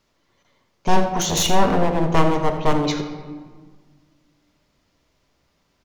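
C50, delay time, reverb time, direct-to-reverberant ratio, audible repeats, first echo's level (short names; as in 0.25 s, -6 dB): 7.5 dB, 85 ms, 1.6 s, 5.0 dB, 1, -14.0 dB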